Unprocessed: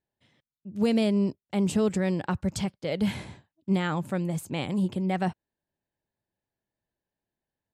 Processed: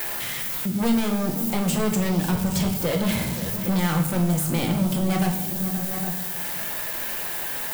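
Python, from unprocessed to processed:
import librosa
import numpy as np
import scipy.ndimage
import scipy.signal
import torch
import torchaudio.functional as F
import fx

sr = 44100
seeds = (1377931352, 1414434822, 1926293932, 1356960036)

p1 = x + 0.5 * 10.0 ** (-32.0 / 20.0) * np.diff(np.sign(x), prepend=np.sign(x[:1]))
p2 = fx.high_shelf(p1, sr, hz=10000.0, db=6.5)
p3 = np.clip(p2, -10.0 ** (-29.0 / 20.0), 10.0 ** (-29.0 / 20.0))
p4 = p3 + fx.echo_multitap(p3, sr, ms=(528, 811), db=(-17.0, -16.5), dry=0)
p5 = fx.room_shoebox(p4, sr, seeds[0], volume_m3=200.0, walls='mixed', distance_m=0.82)
p6 = fx.band_squash(p5, sr, depth_pct=70)
y = F.gain(torch.from_numpy(p6), 5.5).numpy()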